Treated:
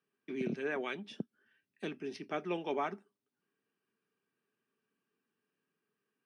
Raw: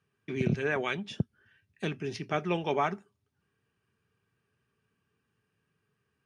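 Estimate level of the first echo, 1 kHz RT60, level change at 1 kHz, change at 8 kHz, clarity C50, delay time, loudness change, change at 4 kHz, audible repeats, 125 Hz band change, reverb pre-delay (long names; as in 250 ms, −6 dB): no echo audible, no reverb audible, −7.0 dB, can't be measured, no reverb audible, no echo audible, −7.0 dB, −7.5 dB, no echo audible, −15.0 dB, no reverb audible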